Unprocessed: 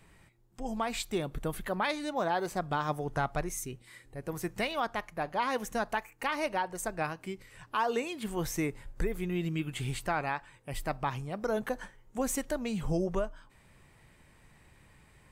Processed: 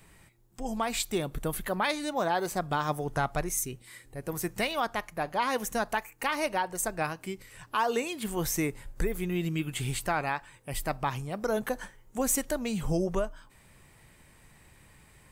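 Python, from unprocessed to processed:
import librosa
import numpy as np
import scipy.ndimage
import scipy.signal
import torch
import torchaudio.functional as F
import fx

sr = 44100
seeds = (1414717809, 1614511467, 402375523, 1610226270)

y = fx.high_shelf(x, sr, hz=6700.0, db=9.0)
y = y * 10.0 ** (2.0 / 20.0)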